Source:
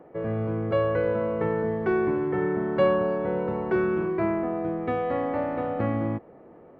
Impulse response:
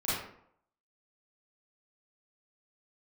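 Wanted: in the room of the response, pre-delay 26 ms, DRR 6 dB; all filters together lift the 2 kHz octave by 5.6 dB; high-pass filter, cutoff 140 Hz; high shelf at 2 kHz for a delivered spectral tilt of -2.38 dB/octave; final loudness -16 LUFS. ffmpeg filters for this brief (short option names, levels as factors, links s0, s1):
-filter_complex "[0:a]highpass=140,highshelf=f=2000:g=8,equalizer=f=2000:t=o:g=3,asplit=2[s0][s1];[1:a]atrim=start_sample=2205,adelay=26[s2];[s1][s2]afir=irnorm=-1:irlink=0,volume=0.2[s3];[s0][s3]amix=inputs=2:normalize=0,volume=2.37"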